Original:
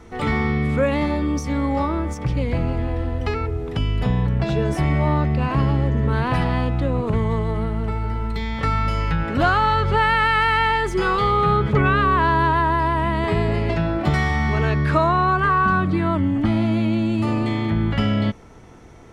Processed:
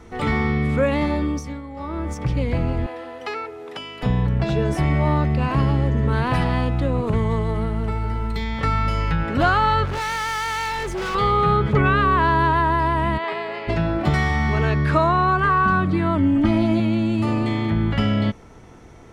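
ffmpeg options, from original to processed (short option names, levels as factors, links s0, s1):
-filter_complex "[0:a]asettb=1/sr,asplit=3[s0][s1][s2];[s0]atrim=end=2.864[s3];[s1]atrim=start=2.86:end=4.03,asetpts=PTS-STARTPTS,afade=t=in:d=0.004:c=qsin,afade=t=out:st=1.166:d=0.004:c=qsin,highpass=510[s4];[s2]atrim=start=4.026[s5];[s3][s4]acrossfade=d=0.004:c1=hsin:c2=qsin[s6];[s6][s5]acrossfade=d=0.004:c1=qsin:c2=hsin,asettb=1/sr,asplit=3[s7][s8][s9];[s7]atrim=end=5.054[s10];[s8]atrim=start=5.05:end=8.44,asetpts=PTS-STARTPTS,afade=t=in:d=0.004:c=qsin,afade=t=out:st=3.386:d=0.004:c=qsin,highshelf=f=6100:g=4.5[s11];[s9]atrim=start=8.436[s12];[s10][s11]acrossfade=d=0.004:c1=hsin:c2=qsin[s13];[s13][s12]acrossfade=d=0.004:c1=qsin:c2=hsin,asettb=1/sr,asplit=3[s14][s15][s16];[s14]atrim=end=9.854[s17];[s15]atrim=start=9.85:end=11.15,asetpts=PTS-STARTPTS,afade=t=in:d=0.004:c=qsin,afade=t=out:st=1.296:d=0.004:c=qsin,volume=15.8,asoftclip=hard,volume=0.0631[s18];[s16]atrim=start=11.146[s19];[s17][s18]acrossfade=d=0.004:c1=hsin:c2=qsin[s20];[s20][s19]acrossfade=d=0.004:c1=qsin:c2=hsin,asplit=3[s21][s22][s23];[s21]afade=t=out:st=13.17:d=0.02[s24];[s22]highpass=610,lowpass=4300,afade=t=in:st=13.17:d=0.02,afade=t=out:st=13.67:d=0.02[s25];[s23]afade=t=in:st=13.67:d=0.02[s26];[s24][s25][s26]amix=inputs=3:normalize=0,asettb=1/sr,asplit=3[s27][s28][s29];[s27]atrim=end=16.174[s30];[s28]atrim=start=16.17:end=16.8,asetpts=PTS-STARTPTS,afade=t=in:d=0.004:c=qsin,afade=t=out:st=0.626:d=0.004:c=qsin,aecho=1:1:3.2:0.65,atrim=end_sample=27783[s31];[s29]atrim=start=16.796[s32];[s30][s31]acrossfade=d=0.004:c1=hsin:c2=qsin[s33];[s33][s32]acrossfade=d=0.004:c1=qsin:c2=hsin,asplit=3[s34][s35][s36];[s34]atrim=end=1.62,asetpts=PTS-STARTPTS,afade=t=out:st=1.22:d=0.4:silence=0.199526[s37];[s35]atrim=start=1.62:end=1.76,asetpts=PTS-STARTPTS,volume=0.2[s38];[s36]atrim=start=1.76,asetpts=PTS-STARTPTS,afade=t=in:d=0.4:silence=0.199526[s39];[s37][s38][s39]concat=n=3:v=0:a=1"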